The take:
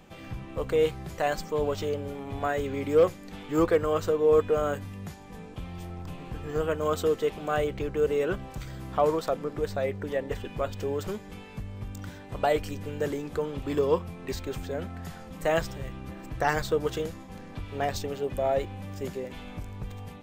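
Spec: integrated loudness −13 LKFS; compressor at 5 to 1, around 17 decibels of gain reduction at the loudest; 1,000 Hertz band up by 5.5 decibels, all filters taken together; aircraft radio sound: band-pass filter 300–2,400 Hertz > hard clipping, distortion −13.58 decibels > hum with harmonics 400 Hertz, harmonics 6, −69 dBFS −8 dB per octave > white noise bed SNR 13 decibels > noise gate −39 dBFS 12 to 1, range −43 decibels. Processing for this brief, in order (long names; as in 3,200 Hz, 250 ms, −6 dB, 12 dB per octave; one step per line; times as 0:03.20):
parametric band 1,000 Hz +8 dB
downward compressor 5 to 1, threshold −35 dBFS
band-pass filter 300–2,400 Hz
hard clipping −33.5 dBFS
hum with harmonics 400 Hz, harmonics 6, −69 dBFS −8 dB per octave
white noise bed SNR 13 dB
noise gate −39 dBFS 12 to 1, range −43 dB
level +28.5 dB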